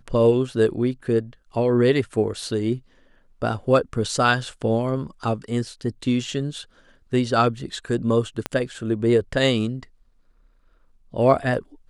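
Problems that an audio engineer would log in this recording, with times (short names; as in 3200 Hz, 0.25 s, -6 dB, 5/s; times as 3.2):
8.46 pop -10 dBFS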